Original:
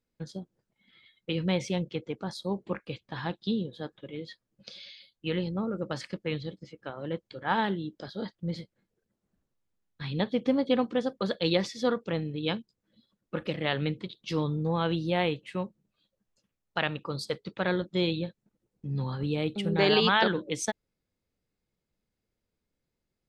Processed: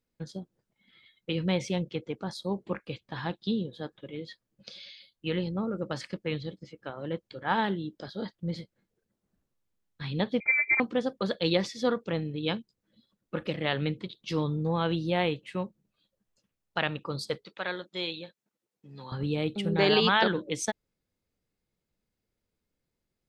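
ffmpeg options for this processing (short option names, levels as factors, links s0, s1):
-filter_complex "[0:a]asettb=1/sr,asplit=3[s0][s1][s2];[s0]atrim=end=10.404[s3];[s1]atrim=start=10.4:end=10.8,asetpts=PTS-STARTPTS,afade=t=in:d=0.004:c=qsin,afade=t=out:st=0.396:d=0.004:c=qsin,lowpass=f=2200:t=q:w=0.5098,lowpass=f=2200:t=q:w=0.6013,lowpass=f=2200:t=q:w=0.9,lowpass=f=2200:t=q:w=2.563,afreqshift=-2600[s4];[s2]atrim=start=10.796[s5];[s3][s4]acrossfade=d=0.004:c1=hsin:c2=qsin[s6];[s6][s5]acrossfade=d=0.004:c1=qsin:c2=hsin,asettb=1/sr,asplit=3[s7][s8][s9];[s7]atrim=end=17.454[s10];[s8]atrim=start=17.45:end=19.12,asetpts=PTS-STARTPTS,afade=t=in:d=0.004:c=qsin,afade=t=out:st=1.666:d=0.004:c=qsin,highpass=f=1000:p=1[s11];[s9]atrim=start=19.116[s12];[s10][s11]acrossfade=d=0.004:c1=hsin:c2=qsin[s13];[s13][s12]acrossfade=d=0.004:c1=qsin:c2=hsin"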